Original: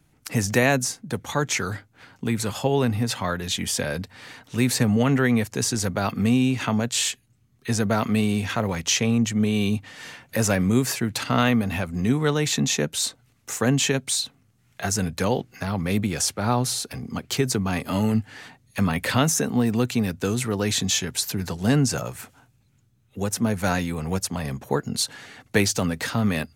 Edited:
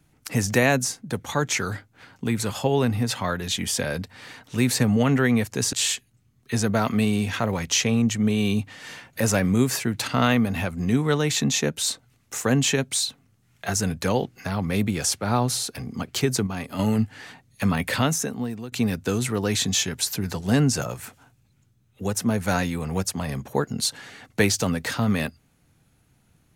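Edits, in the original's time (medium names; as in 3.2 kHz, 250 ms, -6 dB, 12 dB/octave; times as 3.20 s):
5.73–6.89 s: delete
17.63–17.95 s: gain -5.5 dB
19.02–19.88 s: fade out, to -17.5 dB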